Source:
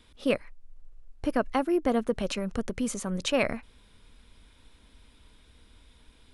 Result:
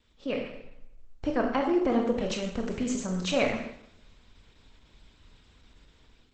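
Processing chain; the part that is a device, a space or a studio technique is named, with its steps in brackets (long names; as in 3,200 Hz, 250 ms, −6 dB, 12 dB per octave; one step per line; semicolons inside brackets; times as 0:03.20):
speakerphone in a meeting room (convolution reverb RT60 0.80 s, pre-delay 22 ms, DRR 1.5 dB; automatic gain control gain up to 7 dB; level −8 dB; Opus 12 kbit/s 48,000 Hz)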